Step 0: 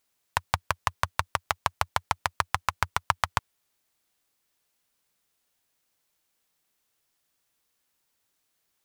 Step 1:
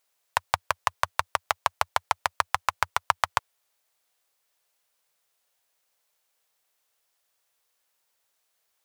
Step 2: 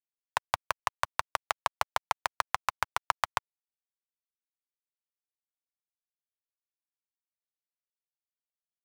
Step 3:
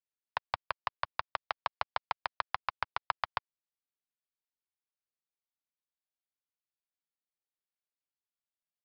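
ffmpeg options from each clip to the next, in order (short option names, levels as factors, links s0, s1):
-af "lowshelf=f=390:t=q:w=1.5:g=-9,volume=1.12"
-af "aeval=exprs='sgn(val(0))*max(abs(val(0))-0.00668,0)':c=same,volume=0.596"
-af "aresample=11025,aresample=44100,volume=0.596"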